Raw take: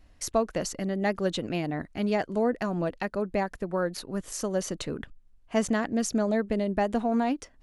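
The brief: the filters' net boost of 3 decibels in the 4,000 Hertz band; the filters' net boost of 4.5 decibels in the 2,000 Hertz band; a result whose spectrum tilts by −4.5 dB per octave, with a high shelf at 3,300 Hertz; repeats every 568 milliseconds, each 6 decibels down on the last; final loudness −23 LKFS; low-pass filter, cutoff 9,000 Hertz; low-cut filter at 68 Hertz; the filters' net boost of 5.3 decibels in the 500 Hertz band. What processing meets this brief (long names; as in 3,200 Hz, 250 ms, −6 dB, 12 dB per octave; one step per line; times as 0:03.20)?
high-pass filter 68 Hz
low-pass filter 9,000 Hz
parametric band 500 Hz +6.5 dB
parametric band 2,000 Hz +5 dB
high-shelf EQ 3,300 Hz −3.5 dB
parametric band 4,000 Hz +5 dB
repeating echo 568 ms, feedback 50%, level −6 dB
level +1.5 dB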